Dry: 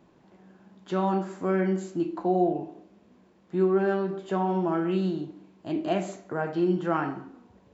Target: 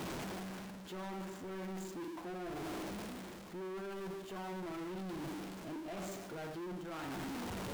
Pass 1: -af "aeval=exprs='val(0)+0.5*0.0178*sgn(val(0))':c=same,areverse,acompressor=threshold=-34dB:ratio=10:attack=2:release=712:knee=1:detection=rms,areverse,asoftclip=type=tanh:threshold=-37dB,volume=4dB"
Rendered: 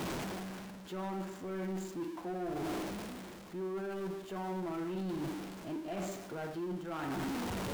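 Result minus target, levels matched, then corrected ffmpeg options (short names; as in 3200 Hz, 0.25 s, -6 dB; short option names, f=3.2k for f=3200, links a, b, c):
soft clip: distortion -7 dB
-af "aeval=exprs='val(0)+0.5*0.0178*sgn(val(0))':c=same,areverse,acompressor=threshold=-34dB:ratio=10:attack=2:release=712:knee=1:detection=rms,areverse,asoftclip=type=tanh:threshold=-45dB,volume=4dB"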